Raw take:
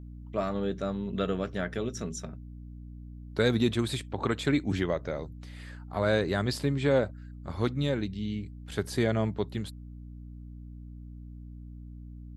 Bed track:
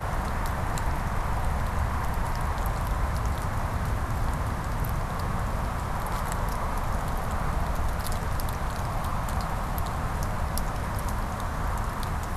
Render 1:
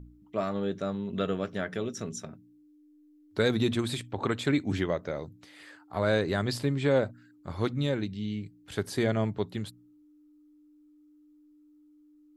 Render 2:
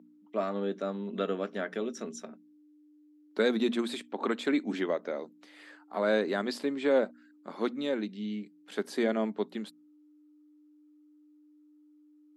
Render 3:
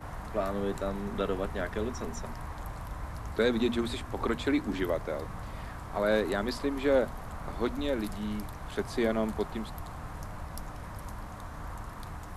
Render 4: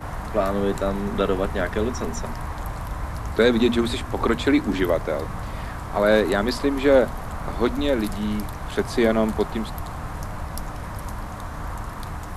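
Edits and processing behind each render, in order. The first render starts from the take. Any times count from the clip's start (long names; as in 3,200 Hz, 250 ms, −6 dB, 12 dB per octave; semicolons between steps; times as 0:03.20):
hum removal 60 Hz, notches 4
elliptic high-pass filter 210 Hz, stop band 50 dB; high-shelf EQ 5,500 Hz −7.5 dB
mix in bed track −11.5 dB
level +9 dB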